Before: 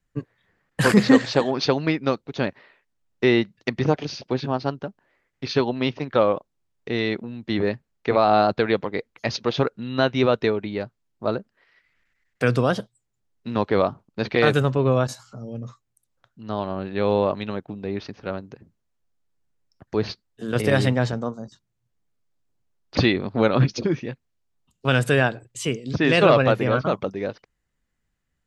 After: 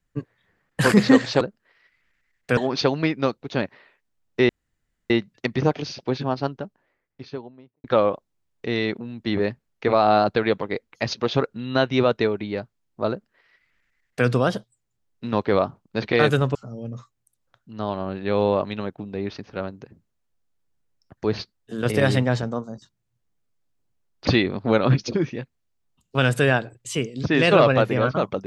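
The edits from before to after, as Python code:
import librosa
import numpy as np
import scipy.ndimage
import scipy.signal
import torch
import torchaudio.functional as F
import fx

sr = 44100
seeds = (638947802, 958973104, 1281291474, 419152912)

y = fx.studio_fade_out(x, sr, start_s=4.62, length_s=1.45)
y = fx.edit(y, sr, fx.insert_room_tone(at_s=3.33, length_s=0.61),
    fx.duplicate(start_s=11.33, length_s=1.16, to_s=1.41),
    fx.cut(start_s=14.78, length_s=0.47), tone=tone)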